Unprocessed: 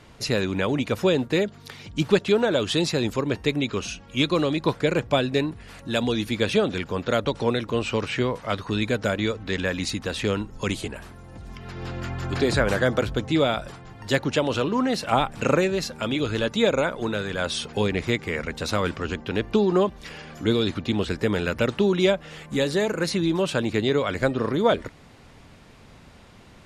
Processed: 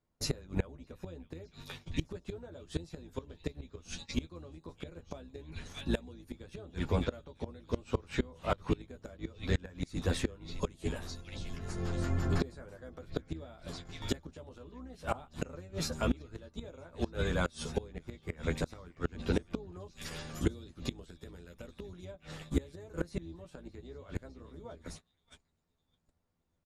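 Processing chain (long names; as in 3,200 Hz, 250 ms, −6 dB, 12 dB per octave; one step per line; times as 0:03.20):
sub-octave generator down 2 octaves, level +1 dB
parametric band 2,800 Hz −9 dB 1.6 octaves
double-tracking delay 12 ms −3.5 dB
echo through a band-pass that steps 611 ms, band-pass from 2,800 Hz, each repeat 0.7 octaves, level −6 dB
noise gate −39 dBFS, range −30 dB
0:19.72–0:22.05: high-shelf EQ 4,100 Hz +10 dB
gate with flip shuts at −14 dBFS, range −25 dB
level −4 dB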